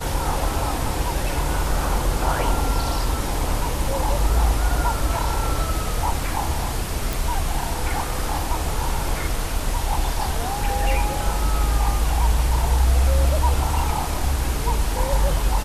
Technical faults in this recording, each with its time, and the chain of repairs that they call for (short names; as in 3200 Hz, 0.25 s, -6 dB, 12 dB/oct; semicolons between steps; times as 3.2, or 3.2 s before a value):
7.13 pop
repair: de-click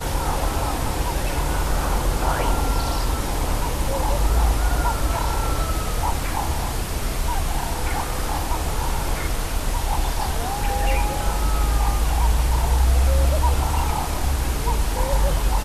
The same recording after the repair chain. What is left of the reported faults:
none